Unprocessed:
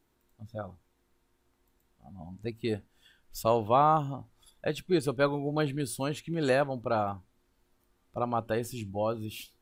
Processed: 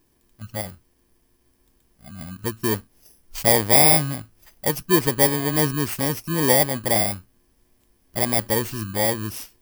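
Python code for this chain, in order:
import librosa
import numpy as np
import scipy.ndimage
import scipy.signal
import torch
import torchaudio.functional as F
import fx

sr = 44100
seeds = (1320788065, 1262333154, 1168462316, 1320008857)

y = fx.bit_reversed(x, sr, seeds[0], block=32)
y = F.gain(torch.from_numpy(y), 8.5).numpy()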